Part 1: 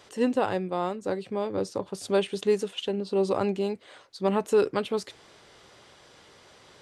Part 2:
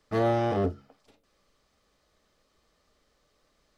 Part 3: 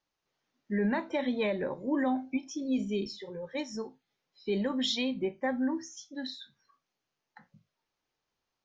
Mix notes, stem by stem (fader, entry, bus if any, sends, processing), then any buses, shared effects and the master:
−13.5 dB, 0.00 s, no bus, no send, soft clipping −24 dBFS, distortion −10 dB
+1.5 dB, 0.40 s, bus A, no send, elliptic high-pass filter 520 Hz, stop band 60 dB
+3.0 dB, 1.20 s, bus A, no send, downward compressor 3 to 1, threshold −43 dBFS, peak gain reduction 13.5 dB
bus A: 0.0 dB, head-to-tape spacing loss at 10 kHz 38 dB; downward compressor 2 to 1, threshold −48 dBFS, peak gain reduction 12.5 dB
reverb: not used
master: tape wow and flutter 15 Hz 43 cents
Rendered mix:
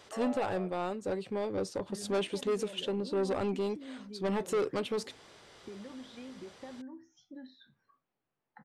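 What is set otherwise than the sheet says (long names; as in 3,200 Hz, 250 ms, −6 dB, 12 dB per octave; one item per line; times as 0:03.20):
stem 1 −13.5 dB → −2.0 dB
stem 2: entry 0.40 s → 0.00 s
master: missing tape wow and flutter 15 Hz 43 cents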